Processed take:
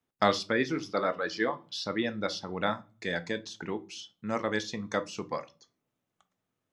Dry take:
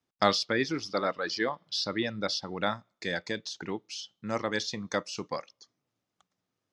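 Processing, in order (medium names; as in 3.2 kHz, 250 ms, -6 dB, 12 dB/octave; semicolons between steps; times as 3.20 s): peaking EQ 4.9 kHz -8 dB 0.64 oct; reverberation RT60 0.30 s, pre-delay 5 ms, DRR 10 dB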